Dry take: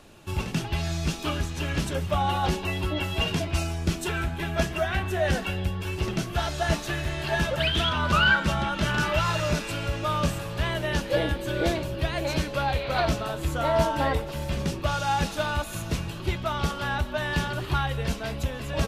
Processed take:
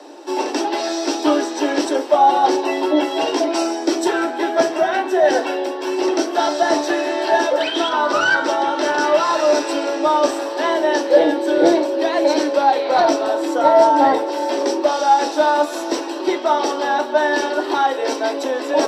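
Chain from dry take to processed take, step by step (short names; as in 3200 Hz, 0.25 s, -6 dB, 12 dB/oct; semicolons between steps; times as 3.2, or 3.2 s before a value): steep high-pass 280 Hz 96 dB/oct; high shelf 8100 Hz -6.5 dB; in parallel at 0 dB: vocal rider within 4 dB 0.5 s; on the sum: soft clip -11.5 dBFS, distortion -22 dB; reverb RT60 0.30 s, pre-delay 3 ms, DRR 4.5 dB; gain -3.5 dB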